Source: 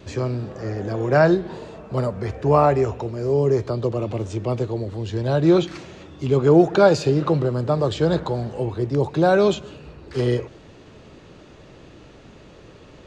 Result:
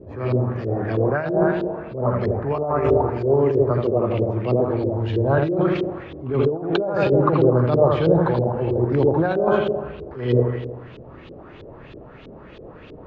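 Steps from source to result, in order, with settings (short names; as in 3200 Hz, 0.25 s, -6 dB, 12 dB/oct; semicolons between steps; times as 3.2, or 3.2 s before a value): dark delay 81 ms, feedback 60%, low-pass 2200 Hz, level -3.5 dB; negative-ratio compressor -17 dBFS, ratio -0.5; LFO low-pass saw up 3.1 Hz 380–3800 Hz; attack slew limiter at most 100 dB/s; gain -1 dB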